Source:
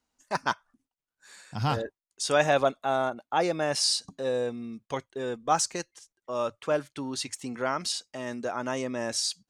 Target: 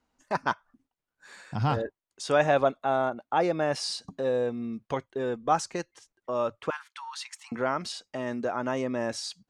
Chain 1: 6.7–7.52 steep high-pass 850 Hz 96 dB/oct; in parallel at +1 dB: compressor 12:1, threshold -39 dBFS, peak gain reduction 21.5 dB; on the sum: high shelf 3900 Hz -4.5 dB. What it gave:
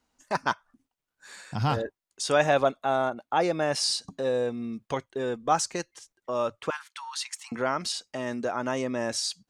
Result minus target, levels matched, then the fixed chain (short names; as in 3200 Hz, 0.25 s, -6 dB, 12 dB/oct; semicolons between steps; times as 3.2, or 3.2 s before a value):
8000 Hz band +6.5 dB
6.7–7.52 steep high-pass 850 Hz 96 dB/oct; in parallel at +1 dB: compressor 12:1, threshold -39 dBFS, peak gain reduction 21.5 dB; on the sum: high shelf 3900 Hz -14 dB